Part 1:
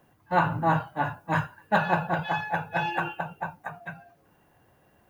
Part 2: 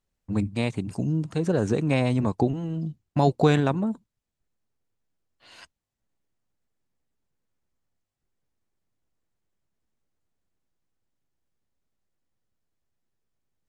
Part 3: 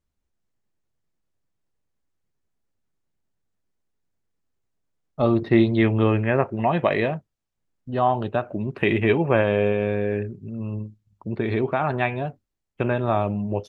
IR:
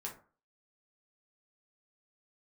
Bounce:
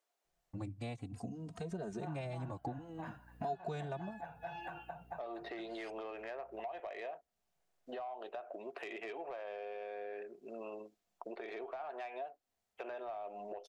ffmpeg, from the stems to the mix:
-filter_complex "[0:a]aeval=exprs='val(0)+0.00398*(sin(2*PI*60*n/s)+sin(2*PI*2*60*n/s)/2+sin(2*PI*3*60*n/s)/3+sin(2*PI*4*60*n/s)/4+sin(2*PI*5*60*n/s)/5)':channel_layout=same,adelay=1700,volume=-9dB[link_01];[1:a]asplit=2[link_02][link_03];[link_03]adelay=2.9,afreqshift=-0.54[link_04];[link_02][link_04]amix=inputs=2:normalize=1,adelay=250,volume=-3.5dB[link_05];[2:a]highpass=frequency=420:width=0.5412,highpass=frequency=420:width=1.3066,acompressor=threshold=-26dB:ratio=4,volume=2dB[link_06];[link_01][link_06]amix=inputs=2:normalize=0,asoftclip=type=tanh:threshold=-19.5dB,alimiter=level_in=8.5dB:limit=-24dB:level=0:latency=1:release=384,volume=-8.5dB,volume=0dB[link_07];[link_05][link_07]amix=inputs=2:normalize=0,equalizer=frequency=700:width_type=o:width=0.22:gain=11.5,acompressor=threshold=-43dB:ratio=3"

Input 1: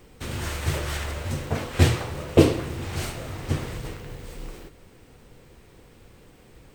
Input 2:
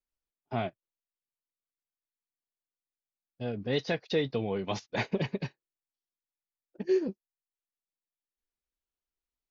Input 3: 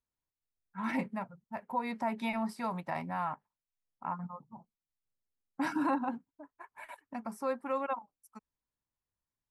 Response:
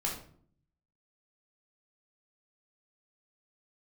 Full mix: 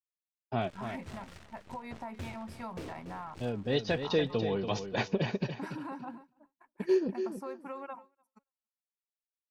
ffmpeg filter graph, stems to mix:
-filter_complex "[0:a]adynamicsmooth=sensitivity=7.5:basefreq=6100,asoftclip=type=tanh:threshold=-14dB,aeval=exprs='0.2*(cos(1*acos(clip(val(0)/0.2,-1,1)))-cos(1*PI/2))+0.0316*(cos(7*acos(clip(val(0)/0.2,-1,1)))-cos(7*PI/2))+0.0141*(cos(8*acos(clip(val(0)/0.2,-1,1)))-cos(8*PI/2))':channel_layout=same,adelay=400,volume=-17.5dB,asplit=2[link_01][link_02];[link_02]volume=-13dB[link_03];[1:a]bandreject=frequency=2100:width=8.6,volume=0dB,asplit=2[link_04][link_05];[link_05]volume=-8.5dB[link_06];[2:a]volume=-4dB,asplit=2[link_07][link_08];[link_08]volume=-20dB[link_09];[link_01][link_07]amix=inputs=2:normalize=0,acompressor=threshold=-38dB:ratio=6,volume=0dB[link_10];[link_03][link_06][link_09]amix=inputs=3:normalize=0,aecho=0:1:286|572|858|1144:1|0.24|0.0576|0.0138[link_11];[link_04][link_10][link_11]amix=inputs=3:normalize=0,agate=range=-33dB:threshold=-45dB:ratio=3:detection=peak"

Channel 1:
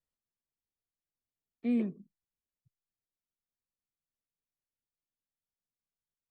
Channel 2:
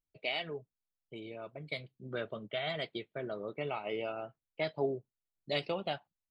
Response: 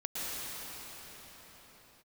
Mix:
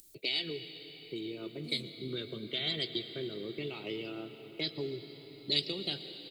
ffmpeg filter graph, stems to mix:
-filter_complex "[0:a]highshelf=frequency=4300:gain=11.5,volume=-19dB[link_01];[1:a]firequalizer=gain_entry='entry(160,0);entry(360,12);entry(600,-10);entry(2900,5);entry(5800,-17)':delay=0.05:min_phase=1,acrossover=split=140|3000[link_02][link_03][link_04];[link_03]acompressor=threshold=-42dB:ratio=6[link_05];[link_02][link_05][link_04]amix=inputs=3:normalize=0,volume=2.5dB,asplit=2[link_06][link_07];[link_07]volume=-13.5dB[link_08];[2:a]atrim=start_sample=2205[link_09];[link_08][link_09]afir=irnorm=-1:irlink=0[link_10];[link_01][link_06][link_10]amix=inputs=3:normalize=0,acompressor=mode=upward:threshold=-58dB:ratio=2.5,aexciter=amount=14.8:drive=6.5:freq=4400"

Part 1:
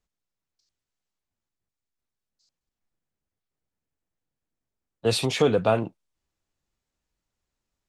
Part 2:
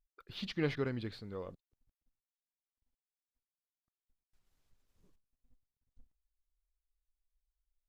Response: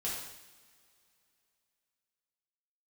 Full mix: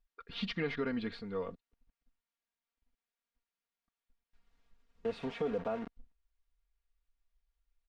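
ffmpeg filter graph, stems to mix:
-filter_complex "[0:a]acrusher=bits=4:mix=0:aa=0.000001,volume=-13dB[link_01];[1:a]crystalizer=i=6:c=0,volume=1.5dB[link_02];[link_01][link_02]amix=inputs=2:normalize=0,lowpass=1900,aecho=1:1:4.3:0.77,alimiter=level_in=1.5dB:limit=-24dB:level=0:latency=1:release=136,volume=-1.5dB"

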